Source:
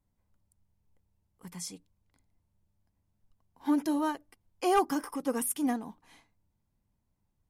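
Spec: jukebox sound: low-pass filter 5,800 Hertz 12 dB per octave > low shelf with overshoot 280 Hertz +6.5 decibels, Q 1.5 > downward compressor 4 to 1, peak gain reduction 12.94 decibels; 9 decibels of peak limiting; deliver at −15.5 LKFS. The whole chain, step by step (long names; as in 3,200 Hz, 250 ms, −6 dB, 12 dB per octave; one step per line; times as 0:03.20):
brickwall limiter −26 dBFS
low-pass filter 5,800 Hz 12 dB per octave
low shelf with overshoot 280 Hz +6.5 dB, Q 1.5
downward compressor 4 to 1, threshold −41 dBFS
level +29 dB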